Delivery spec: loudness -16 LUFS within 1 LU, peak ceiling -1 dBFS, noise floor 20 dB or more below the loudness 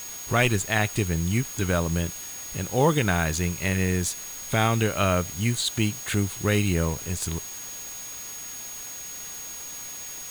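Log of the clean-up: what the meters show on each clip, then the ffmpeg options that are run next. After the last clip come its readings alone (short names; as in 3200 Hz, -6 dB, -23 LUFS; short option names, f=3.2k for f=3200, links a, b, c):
steady tone 6600 Hz; tone level -37 dBFS; noise floor -38 dBFS; noise floor target -46 dBFS; loudness -26.0 LUFS; peak -9.0 dBFS; loudness target -16.0 LUFS
-> -af "bandreject=f=6.6k:w=30"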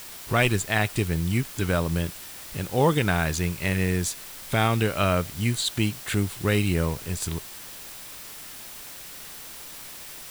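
steady tone none; noise floor -41 dBFS; noise floor target -46 dBFS
-> -af "afftdn=nr=6:nf=-41"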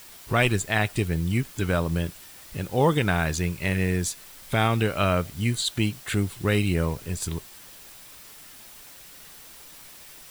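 noise floor -47 dBFS; loudness -25.5 LUFS; peak -9.5 dBFS; loudness target -16.0 LUFS
-> -af "volume=9.5dB,alimiter=limit=-1dB:level=0:latency=1"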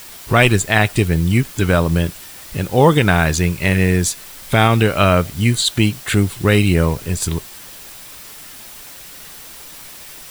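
loudness -16.0 LUFS; peak -1.0 dBFS; noise floor -37 dBFS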